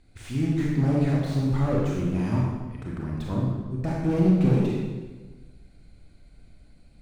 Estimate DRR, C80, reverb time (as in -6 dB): -3.0 dB, 2.5 dB, 1.3 s